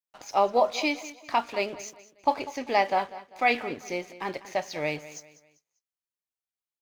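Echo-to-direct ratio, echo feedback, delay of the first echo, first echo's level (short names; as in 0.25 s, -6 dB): -16.0 dB, 36%, 0.197 s, -16.5 dB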